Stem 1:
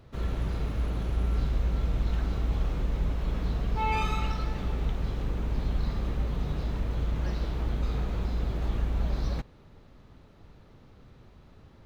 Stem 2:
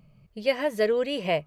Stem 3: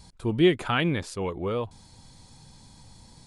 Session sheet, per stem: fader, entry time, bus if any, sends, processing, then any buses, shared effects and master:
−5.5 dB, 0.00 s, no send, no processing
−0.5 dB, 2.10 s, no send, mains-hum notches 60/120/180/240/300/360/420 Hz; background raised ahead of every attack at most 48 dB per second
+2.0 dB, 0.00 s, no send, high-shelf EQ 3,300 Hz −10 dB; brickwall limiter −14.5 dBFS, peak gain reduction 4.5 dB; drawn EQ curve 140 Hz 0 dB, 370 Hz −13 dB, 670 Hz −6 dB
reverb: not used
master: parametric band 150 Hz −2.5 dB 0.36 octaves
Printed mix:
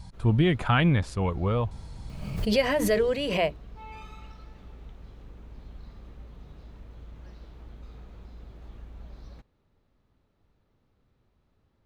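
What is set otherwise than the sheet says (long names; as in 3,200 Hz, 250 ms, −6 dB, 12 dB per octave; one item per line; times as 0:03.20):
stem 1 −5.5 dB → −16.0 dB
stem 3 +2.0 dB → +9.5 dB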